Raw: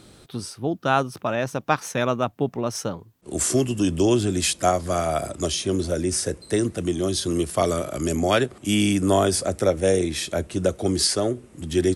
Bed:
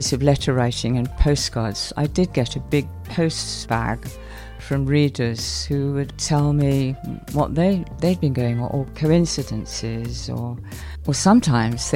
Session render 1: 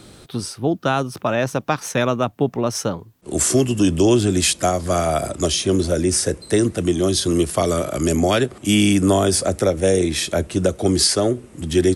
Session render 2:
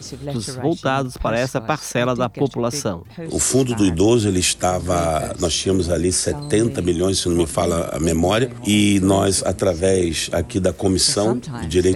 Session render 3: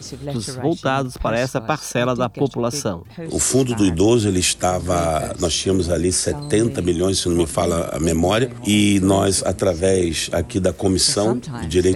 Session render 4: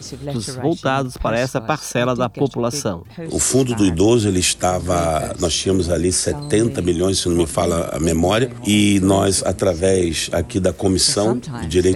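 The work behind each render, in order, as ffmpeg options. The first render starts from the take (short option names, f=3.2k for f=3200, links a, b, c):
-filter_complex "[0:a]asplit=2[a][b];[b]alimiter=limit=-12.5dB:level=0:latency=1:release=239,volume=-1dB[c];[a][c]amix=inputs=2:normalize=0,acrossover=split=420|3000[d][e][f];[e]acompressor=threshold=-17dB:ratio=6[g];[d][g][f]amix=inputs=3:normalize=0"
-filter_complex "[1:a]volume=-12dB[a];[0:a][a]amix=inputs=2:normalize=0"
-filter_complex "[0:a]asettb=1/sr,asplit=3[a][b][c];[a]atrim=end=1.454[d];[b]atrim=start=1.45:end=3.05,asetpts=PTS-STARTPTS,afade=t=in:d=0.004:c=qsin,afade=t=out:st=1.596:d=0.004:c=qsin,asuperstop=centerf=2000:order=8:qfactor=5.6[e];[c]atrim=start=3.046[f];[d][e]acrossfade=d=0.004:c1=hsin:c2=qsin[g];[g][f]acrossfade=d=0.004:c1=qsin:c2=hsin"
-af "volume=1dB"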